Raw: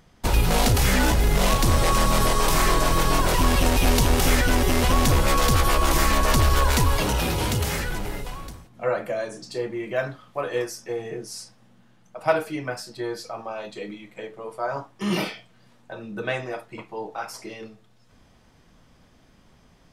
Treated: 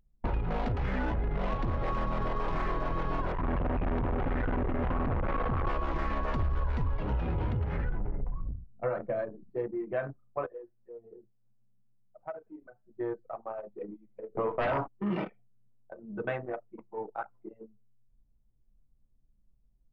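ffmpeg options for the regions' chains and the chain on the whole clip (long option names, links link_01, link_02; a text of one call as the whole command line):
ffmpeg -i in.wav -filter_complex "[0:a]asettb=1/sr,asplit=3[link_01][link_02][link_03];[link_01]atrim=end=3.324[link_04];[link_02]atrim=start=3.32:end=5.67,asetpts=PTS-STARTPTS,afade=type=in:duration=0.004:curve=qsin,afade=type=out:start_time=2.346:duration=0.004:curve=qsin,lowpass=2500,volume=22.5dB,asoftclip=hard,volume=-22.5dB[link_05];[link_03]atrim=start=5.666[link_06];[link_04][link_05]acrossfade=duration=0.004:curve1=hsin:curve2=qsin[link_07];[link_07][link_06]acrossfade=duration=0.004:curve1=qsin:curve2=hsin,asettb=1/sr,asplit=3[link_08][link_09][link_10];[link_08]atrim=end=6.404[link_11];[link_09]atrim=start=6.4:end=9.5,asetpts=PTS-STARTPTS,afade=type=in:duration=0.004:curve=qsin,afade=type=out:start_time=3.096:duration=0.004:curve=qsin,lowshelf=frequency=140:gain=9.5,volume=6.5dB,asoftclip=hard,volume=-6.5dB[link_12];[link_10]atrim=start=9.496[link_13];[link_11][link_12]acrossfade=duration=0.004:curve1=hsin:curve2=qsin[link_14];[link_14][link_13]acrossfade=duration=0.004:curve1=qsin:curve2=hsin,asettb=1/sr,asplit=3[link_15][link_16][link_17];[link_15]atrim=end=10.464[link_18];[link_16]atrim=start=10.46:end=12.85,asetpts=PTS-STARTPTS,afade=type=in:duration=0.004:curve=qsin,afade=type=out:start_time=2.386:duration=0.004:curve=qsin,lowshelf=frequency=380:gain=-3,acompressor=threshold=-40dB:ratio=2:attack=3.2:release=140:knee=1:detection=peak[link_19];[link_17]atrim=start=12.846[link_20];[link_18][link_19]acrossfade=duration=0.004:curve1=hsin:curve2=qsin[link_21];[link_21][link_20]acrossfade=duration=0.004:curve1=qsin:curve2=hsin,asettb=1/sr,asplit=3[link_22][link_23][link_24];[link_22]atrim=end=14.354[link_25];[link_23]atrim=start=14.35:end=14.88,asetpts=PTS-STARTPTS,afade=type=in:duration=0.004:curve=qsin,afade=type=out:start_time=0.526:duration=0.004:curve=qsin,asplit=2[link_26][link_27];[link_27]adelay=17,volume=-14dB[link_28];[link_26][link_28]amix=inputs=2:normalize=0,atrim=end_sample=23373,aeval=exprs='0.188*sin(PI/2*3.55*val(0)/0.188)':channel_layout=same[link_29];[link_24]atrim=start=14.876[link_30];[link_25][link_29]acrossfade=duration=0.004:curve1=hsin:curve2=qsin[link_31];[link_31][link_30]acrossfade=duration=0.004:curve1=qsin:curve2=hsin,lowpass=1800,anlmdn=39.8,acompressor=threshold=-24dB:ratio=6,volume=-3dB" out.wav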